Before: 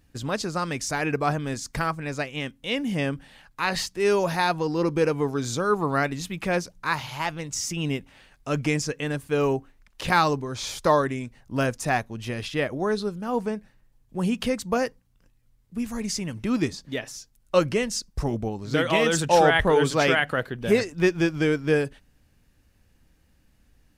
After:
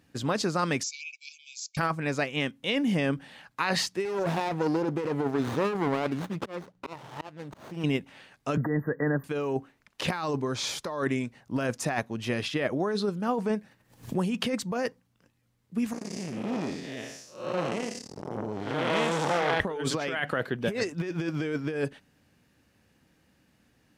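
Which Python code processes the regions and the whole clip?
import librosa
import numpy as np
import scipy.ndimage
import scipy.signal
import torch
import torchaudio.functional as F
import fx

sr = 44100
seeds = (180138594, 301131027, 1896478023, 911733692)

y = fx.chain(x, sr, fx.brickwall_bandpass(low_hz=2200.0, high_hz=7700.0),
    fx.peak_eq(hz=2800.0, db=-8.0, octaves=1.1), at=(0.83, 1.77))
y = fx.chain(y, sr, fx.auto_swell(attack_ms=477.0),
    fx.running_max(window=17), at=(4.05, 7.84))
y = fx.chain(y, sr, fx.brickwall_bandstop(low_hz=2000.0, high_hz=13000.0),
    fx.band_squash(depth_pct=70), at=(8.57, 9.24))
y = fx.chain(y, sr, fx.high_shelf(hz=5000.0, db=4.0),
    fx.pre_swell(db_per_s=81.0), at=(13.53, 14.33))
y = fx.chain(y, sr, fx.spec_blur(span_ms=240.0),
    fx.transformer_sat(knee_hz=1800.0), at=(15.93, 19.6))
y = scipy.signal.sosfilt(scipy.signal.butter(2, 140.0, 'highpass', fs=sr, output='sos'), y)
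y = fx.over_compress(y, sr, threshold_db=-27.0, ratio=-1.0)
y = fx.high_shelf(y, sr, hz=6800.0, db=-7.0)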